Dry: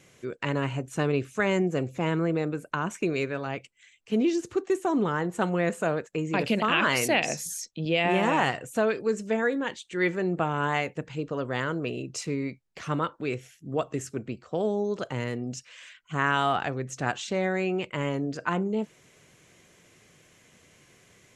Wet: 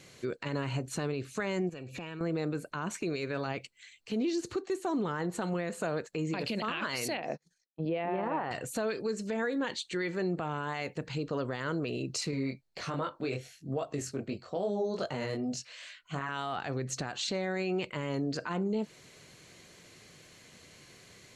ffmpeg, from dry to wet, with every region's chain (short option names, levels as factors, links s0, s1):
-filter_complex "[0:a]asettb=1/sr,asplit=3[s0][s1][s2];[s0]atrim=end=1.694[s3];[s1]atrim=start=1.69:end=2.21,asetpts=PTS-STARTPTS,afade=t=in:d=0.004:c=qsin,afade=t=out:st=0.516:d=0.004:c=qsin,equalizer=f=2400:t=o:w=0.76:g=12.5,acompressor=threshold=0.0112:ratio=10:attack=3.2:release=140:knee=1:detection=peak,asuperstop=centerf=2100:order=4:qfactor=7.8[s4];[s2]atrim=start=2.206[s5];[s3][s4]acrossfade=d=0.004:c1=hsin:c2=qsin[s6];[s6][s5]acrossfade=d=0.004:c1=qsin:c2=hsin,asettb=1/sr,asplit=3[s7][s8][s9];[s7]atrim=end=7.174[s10];[s8]atrim=start=7.17:end=8.51,asetpts=PTS-STARTPTS,afade=t=in:d=0.004:c=qsin,afade=t=out:st=1.336:d=0.004:c=qsin,agate=range=0.0178:threshold=0.02:ratio=16:release=100:detection=peak,lowpass=1200,lowshelf=f=180:g=-10.5[s11];[s9]atrim=start=8.506[s12];[s10][s11]acrossfade=d=0.004:c1=hsin:c2=qsin[s13];[s13][s12]acrossfade=d=0.004:c1=qsin:c2=hsin,asettb=1/sr,asplit=3[s14][s15][s16];[s14]atrim=end=12.314[s17];[s15]atrim=start=12.31:end=16.29,asetpts=PTS-STARTPTS,afade=t=in:d=0.004:c=qsin,afade=t=out:st=3.976:d=0.004:c=qsin,equalizer=f=650:t=o:w=0.59:g=6,flanger=delay=20:depth=2.9:speed=2.5[s18];[s16]atrim=start=16.286[s19];[s17][s18]acrossfade=d=0.004:c1=hsin:c2=qsin[s20];[s20][s19]acrossfade=d=0.004:c1=qsin:c2=hsin,equalizer=f=4300:w=6:g=12.5,acompressor=threshold=0.0355:ratio=6,alimiter=level_in=1.26:limit=0.0631:level=0:latency=1:release=26,volume=0.794,volume=1.26"